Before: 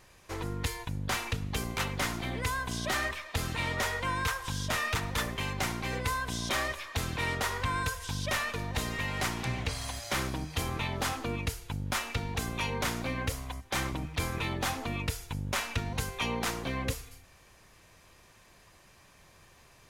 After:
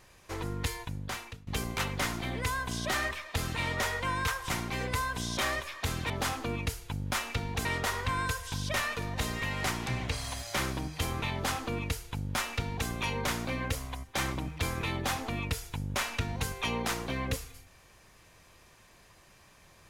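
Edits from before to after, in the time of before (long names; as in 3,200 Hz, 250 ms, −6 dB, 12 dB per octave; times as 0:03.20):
0:00.75–0:01.47: fade out, to −22.5 dB
0:04.50–0:05.62: remove
0:10.90–0:12.45: duplicate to 0:07.22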